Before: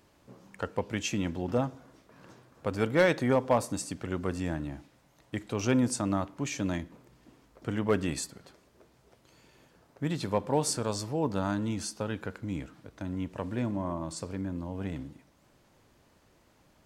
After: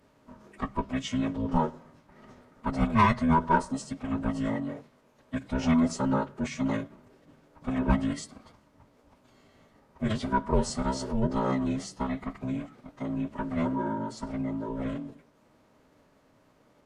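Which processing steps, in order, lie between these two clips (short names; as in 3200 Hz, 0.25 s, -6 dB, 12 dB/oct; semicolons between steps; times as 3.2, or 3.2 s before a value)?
band inversion scrambler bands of 500 Hz; high shelf 2600 Hz -8.5 dB; formant-preserving pitch shift -8 st; gain +3.5 dB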